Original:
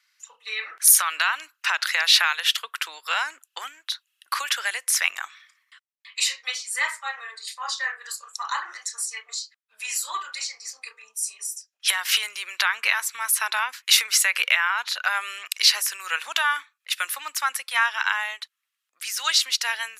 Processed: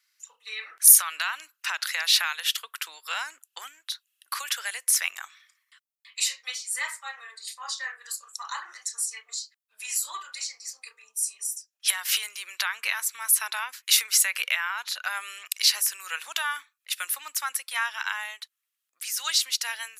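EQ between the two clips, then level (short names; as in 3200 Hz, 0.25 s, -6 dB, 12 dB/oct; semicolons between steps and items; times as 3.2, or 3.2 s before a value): high shelf 6200 Hz +11.5 dB; -7.5 dB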